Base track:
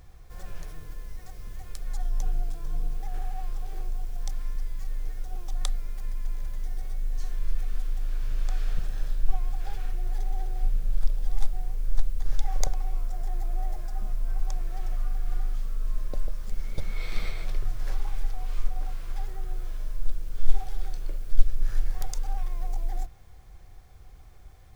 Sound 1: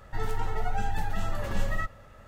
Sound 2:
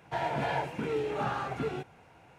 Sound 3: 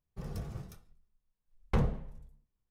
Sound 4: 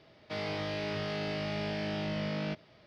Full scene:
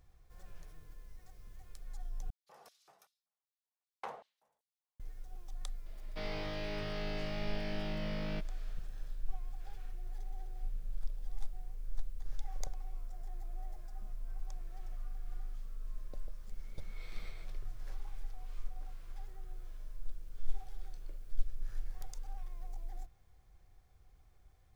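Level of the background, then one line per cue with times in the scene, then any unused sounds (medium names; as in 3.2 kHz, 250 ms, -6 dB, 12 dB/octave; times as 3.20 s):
base track -14 dB
2.30 s: replace with 3 -9.5 dB + LFO high-pass square 2.6 Hz 770–4100 Hz
5.86 s: add 4 -5.5 dB
not used: 1, 2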